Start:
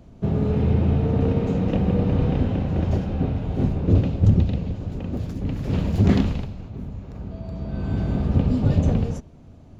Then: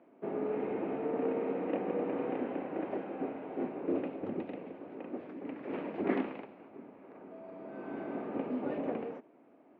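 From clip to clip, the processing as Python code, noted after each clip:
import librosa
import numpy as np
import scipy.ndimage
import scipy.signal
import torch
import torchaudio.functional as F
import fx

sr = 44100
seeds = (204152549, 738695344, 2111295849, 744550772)

y = scipy.signal.sosfilt(scipy.signal.cheby1(3, 1.0, [300.0, 2300.0], 'bandpass', fs=sr, output='sos'), x)
y = F.gain(torch.from_numpy(y), -5.0).numpy()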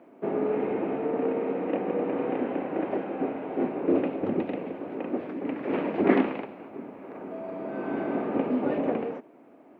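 y = fx.rider(x, sr, range_db=5, speed_s=2.0)
y = F.gain(torch.from_numpy(y), 7.5).numpy()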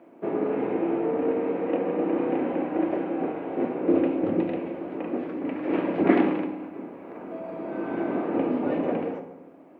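y = fx.rev_fdn(x, sr, rt60_s=1.1, lf_ratio=1.25, hf_ratio=0.6, size_ms=18.0, drr_db=5.5)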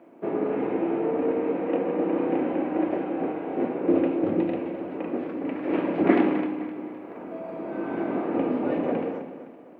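y = fx.echo_feedback(x, sr, ms=257, feedback_pct=44, wet_db=-13)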